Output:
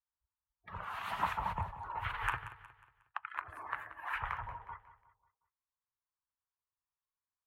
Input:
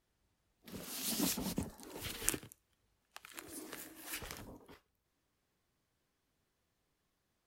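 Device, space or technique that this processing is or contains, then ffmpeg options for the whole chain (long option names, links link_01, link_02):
parallel compression: -filter_complex "[0:a]afftdn=noise_reduction=34:noise_floor=-57,firequalizer=gain_entry='entry(110,0);entry(240,-28);entry(940,13);entry(5000,-30)':delay=0.05:min_phase=1,asplit=2[link_01][link_02];[link_02]acompressor=threshold=-53dB:ratio=6,volume=-1dB[link_03];[link_01][link_03]amix=inputs=2:normalize=0,aecho=1:1:181|362|543|724:0.188|0.0772|0.0317|0.013,volume=5dB"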